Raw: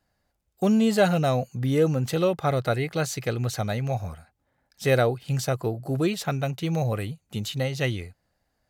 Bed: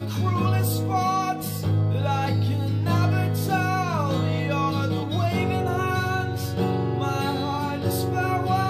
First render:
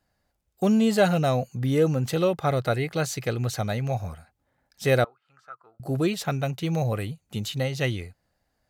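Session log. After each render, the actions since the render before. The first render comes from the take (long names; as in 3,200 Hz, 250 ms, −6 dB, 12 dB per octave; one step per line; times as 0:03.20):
0:05.04–0:05.80: resonant band-pass 1,300 Hz, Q 12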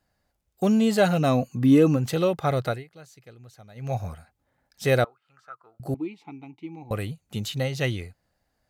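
0:01.19–0:01.95: hollow resonant body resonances 270/1,100/2,600 Hz, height 9 dB → 13 dB
0:02.65–0:03.94: duck −21 dB, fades 0.19 s
0:05.94–0:06.91: formant filter u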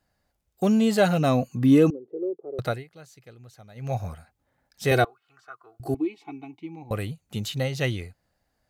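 0:01.90–0:02.59: flat-topped band-pass 390 Hz, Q 3.3
0:04.91–0:06.59: comb filter 2.7 ms, depth 90%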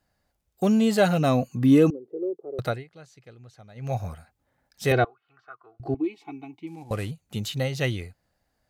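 0:02.70–0:03.83: high-frequency loss of the air 51 metres
0:04.92–0:06.04: high-frequency loss of the air 230 metres
0:06.67–0:07.11: variable-slope delta modulation 64 kbit/s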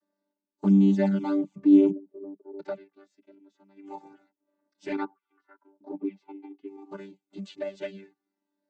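channel vocoder with a chord as carrier bare fifth, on G3
flanger swept by the level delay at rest 3.2 ms, full sweep at −16 dBFS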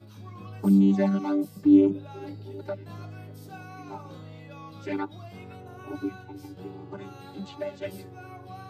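mix in bed −20 dB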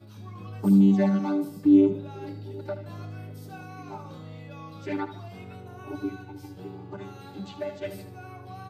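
repeating echo 76 ms, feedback 44%, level −11.5 dB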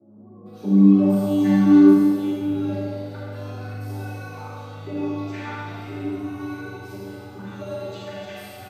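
three-band delay without the direct sound mids, highs, lows 460/760 ms, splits 170/710 Hz
four-comb reverb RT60 2.2 s, combs from 30 ms, DRR −5.5 dB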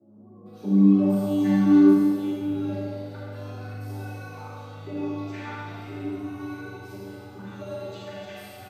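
level −3.5 dB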